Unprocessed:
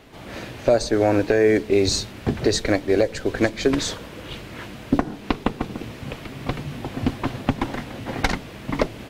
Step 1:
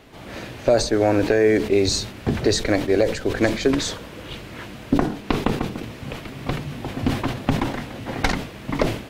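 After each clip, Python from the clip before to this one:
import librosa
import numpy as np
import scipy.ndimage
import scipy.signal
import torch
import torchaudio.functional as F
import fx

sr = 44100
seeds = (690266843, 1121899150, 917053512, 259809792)

y = fx.sustainer(x, sr, db_per_s=100.0)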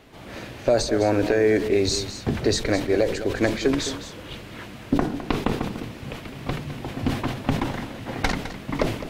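y = x + 10.0 ** (-12.0 / 20.0) * np.pad(x, (int(209 * sr / 1000.0), 0))[:len(x)]
y = y * librosa.db_to_amplitude(-2.5)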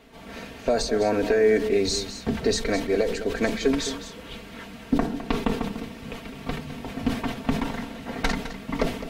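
y = x + 0.65 * np.pad(x, (int(4.4 * sr / 1000.0), 0))[:len(x)]
y = y * librosa.db_to_amplitude(-3.0)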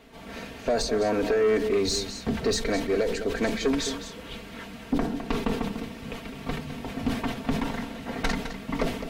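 y = 10.0 ** (-17.0 / 20.0) * np.tanh(x / 10.0 ** (-17.0 / 20.0))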